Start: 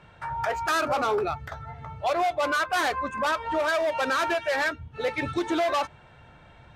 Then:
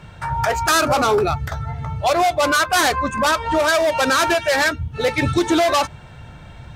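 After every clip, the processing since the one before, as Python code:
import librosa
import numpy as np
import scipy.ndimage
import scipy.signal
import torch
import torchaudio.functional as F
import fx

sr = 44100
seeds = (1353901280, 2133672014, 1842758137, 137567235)

y = fx.bass_treble(x, sr, bass_db=8, treble_db=9)
y = y * librosa.db_to_amplitude(7.5)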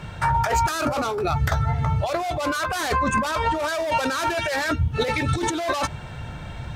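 y = fx.over_compress(x, sr, threshold_db=-23.0, ratio=-1.0)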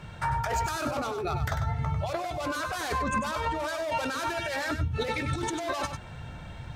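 y = x + 10.0 ** (-8.0 / 20.0) * np.pad(x, (int(97 * sr / 1000.0), 0))[:len(x)]
y = y * librosa.db_to_amplitude(-7.5)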